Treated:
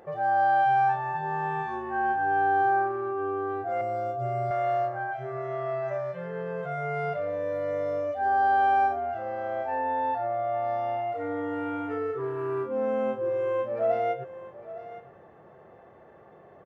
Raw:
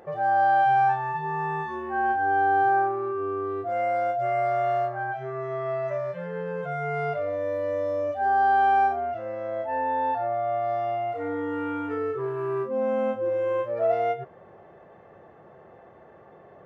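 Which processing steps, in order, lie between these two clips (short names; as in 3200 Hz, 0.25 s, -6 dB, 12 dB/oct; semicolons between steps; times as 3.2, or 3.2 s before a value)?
3.81–4.51 ten-band EQ 125 Hz +10 dB, 1000 Hz -6 dB, 2000 Hz -10 dB; on a send: echo 0.862 s -15 dB; on the sum: gain -2 dB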